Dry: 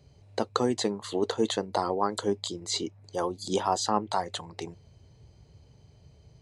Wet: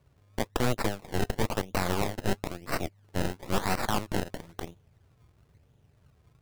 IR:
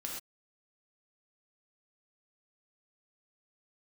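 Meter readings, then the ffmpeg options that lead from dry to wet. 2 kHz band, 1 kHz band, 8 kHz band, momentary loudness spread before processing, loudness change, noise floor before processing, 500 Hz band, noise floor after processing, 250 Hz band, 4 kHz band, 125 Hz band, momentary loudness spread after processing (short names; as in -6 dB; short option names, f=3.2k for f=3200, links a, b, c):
+7.0 dB, -4.0 dB, -4.0 dB, 10 LU, -2.0 dB, -58 dBFS, -4.0 dB, -65 dBFS, -1.5 dB, -4.5 dB, +7.0 dB, 11 LU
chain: -af "acrusher=samples=26:mix=1:aa=0.000001:lfo=1:lforange=26:lforate=1,aeval=exprs='0.282*(cos(1*acos(clip(val(0)/0.282,-1,1)))-cos(1*PI/2))+0.126*(cos(8*acos(clip(val(0)/0.282,-1,1)))-cos(8*PI/2))':c=same,volume=-6.5dB"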